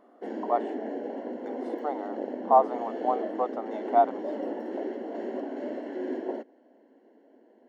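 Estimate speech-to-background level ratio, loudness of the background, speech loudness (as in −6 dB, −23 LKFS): 7.5 dB, −35.0 LKFS, −27.5 LKFS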